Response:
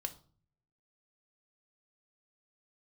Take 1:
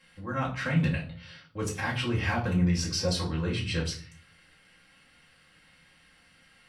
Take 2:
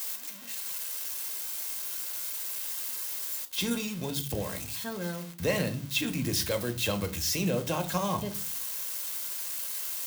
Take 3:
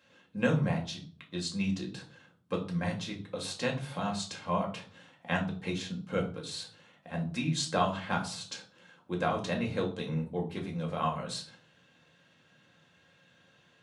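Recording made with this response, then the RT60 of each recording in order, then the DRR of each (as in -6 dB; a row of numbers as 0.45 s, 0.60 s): 2; 0.45 s, 0.45 s, 0.45 s; -5.0 dB, 6.0 dB, -1.0 dB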